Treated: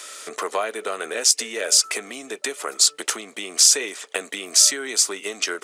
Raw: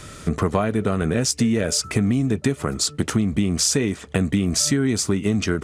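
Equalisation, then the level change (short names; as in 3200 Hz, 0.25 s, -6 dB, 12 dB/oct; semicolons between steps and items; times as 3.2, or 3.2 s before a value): HPF 430 Hz 24 dB/oct; high shelf 2100 Hz +10 dB; -2.5 dB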